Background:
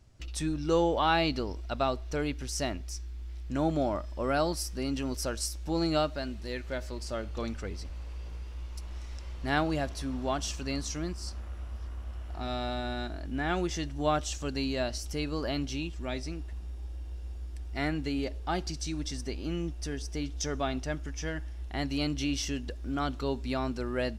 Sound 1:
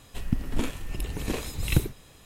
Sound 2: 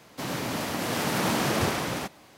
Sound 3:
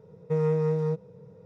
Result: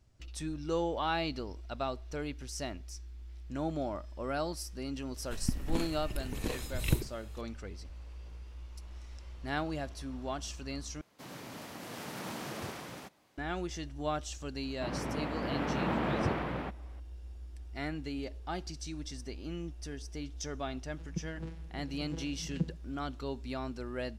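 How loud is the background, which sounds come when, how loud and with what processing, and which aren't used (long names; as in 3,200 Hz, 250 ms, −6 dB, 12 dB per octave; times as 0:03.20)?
background −6.5 dB
0:05.16: mix in 1 −6 dB
0:11.01: overwrite with 2 −15 dB
0:14.63: mix in 2 −4 dB + high-frequency loss of the air 490 metres
0:20.83: mix in 1 −9 dB + channel vocoder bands 8, saw 163 Hz
not used: 3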